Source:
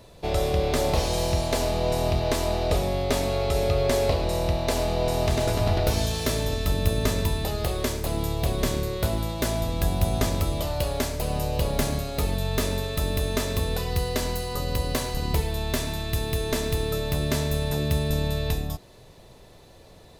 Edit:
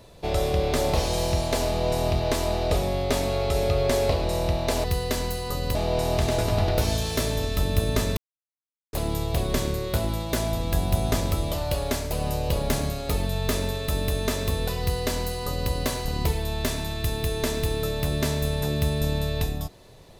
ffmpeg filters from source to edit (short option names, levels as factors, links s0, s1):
-filter_complex "[0:a]asplit=5[s0][s1][s2][s3][s4];[s0]atrim=end=4.842[s5];[s1]atrim=start=13.888:end=14.802[s6];[s2]atrim=start=4.838:end=7.26,asetpts=PTS-STARTPTS,afade=t=out:st=2.418:d=0.004:c=hsin[s7];[s3]atrim=start=7.26:end=8.02,asetpts=PTS-STARTPTS,volume=0[s8];[s4]atrim=start=8.02,asetpts=PTS-STARTPTS,afade=t=in:d=0.004:c=hsin[s9];[s5][s6]acrossfade=d=0.004:c1=hsin:c2=hsin[s10];[s7][s8][s9]concat=n=3:v=0:a=1[s11];[s10][s11]acrossfade=d=0.004:c1=hsin:c2=hsin"